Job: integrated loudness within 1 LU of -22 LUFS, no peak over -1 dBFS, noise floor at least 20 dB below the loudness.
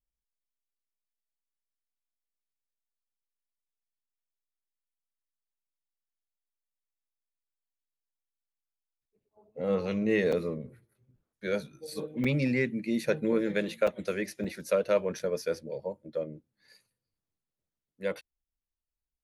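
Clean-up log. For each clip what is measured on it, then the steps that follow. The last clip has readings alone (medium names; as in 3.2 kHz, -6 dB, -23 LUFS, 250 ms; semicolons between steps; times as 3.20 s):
dropouts 5; longest dropout 5.0 ms; loudness -31.0 LUFS; peak level -14.5 dBFS; loudness target -22.0 LUFS
-> interpolate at 10.32/12.24/13.87/14.44/15.19 s, 5 ms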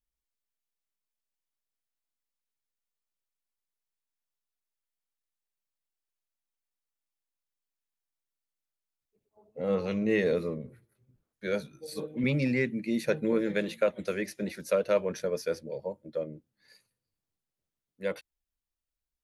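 dropouts 0; loudness -31.0 LUFS; peak level -14.5 dBFS; loudness target -22.0 LUFS
-> trim +9 dB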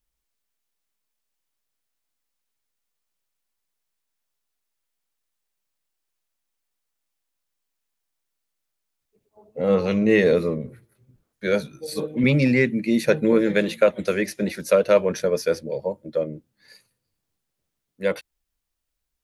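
loudness -22.0 LUFS; peak level -5.5 dBFS; noise floor -80 dBFS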